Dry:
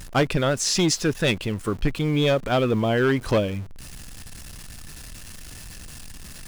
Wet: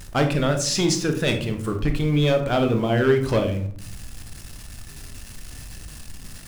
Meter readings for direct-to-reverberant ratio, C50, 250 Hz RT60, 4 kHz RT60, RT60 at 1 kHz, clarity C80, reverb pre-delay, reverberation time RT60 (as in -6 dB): 5.0 dB, 8.5 dB, 0.90 s, 0.30 s, 0.45 s, 14.0 dB, 20 ms, 0.50 s